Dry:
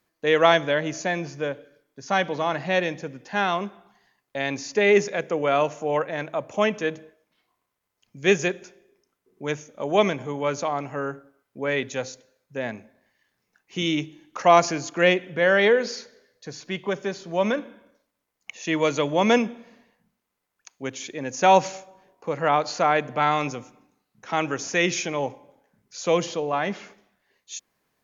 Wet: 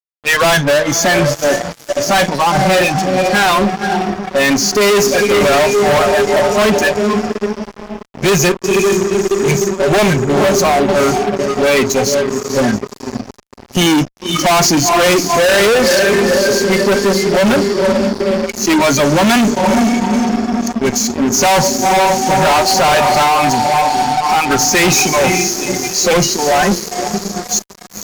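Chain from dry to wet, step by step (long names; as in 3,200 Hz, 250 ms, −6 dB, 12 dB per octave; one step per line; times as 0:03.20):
feedback delay with all-pass diffusion 488 ms, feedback 65%, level −7 dB
0:23.22–0:24.51: downward compressor 3 to 1, threshold −22 dBFS, peak gain reduction 5.5 dB
noise reduction from a noise print of the clip's start 22 dB
fuzz pedal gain 35 dB, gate −44 dBFS
level +4 dB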